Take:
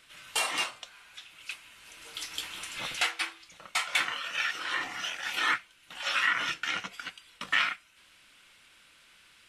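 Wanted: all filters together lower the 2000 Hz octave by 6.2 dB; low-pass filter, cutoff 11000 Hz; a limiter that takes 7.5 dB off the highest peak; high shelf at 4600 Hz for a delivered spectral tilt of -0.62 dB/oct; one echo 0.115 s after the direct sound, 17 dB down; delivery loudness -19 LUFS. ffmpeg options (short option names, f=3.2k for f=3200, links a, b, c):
-af "lowpass=11k,equalizer=f=2k:t=o:g=-6.5,highshelf=f=4.6k:g=-6.5,alimiter=level_in=2dB:limit=-24dB:level=0:latency=1,volume=-2dB,aecho=1:1:115:0.141,volume=19.5dB"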